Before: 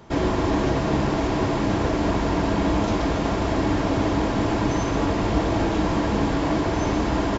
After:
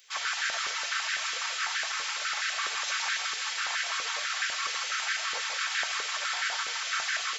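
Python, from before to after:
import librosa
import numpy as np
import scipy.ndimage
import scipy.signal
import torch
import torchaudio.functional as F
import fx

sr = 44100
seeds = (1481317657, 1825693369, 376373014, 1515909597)

p1 = fx.spec_gate(x, sr, threshold_db=-20, keep='weak')
p2 = fx.tilt_eq(p1, sr, slope=4.0)
p3 = p2 + 0.48 * np.pad(p2, (int(4.5 * sr / 1000.0), 0))[:len(p2)]
p4 = p3 + fx.echo_single(p3, sr, ms=158, db=-5.0, dry=0)
p5 = fx.filter_held_highpass(p4, sr, hz=12.0, low_hz=470.0, high_hz=1600.0)
y = p5 * 10.0 ** (-5.0 / 20.0)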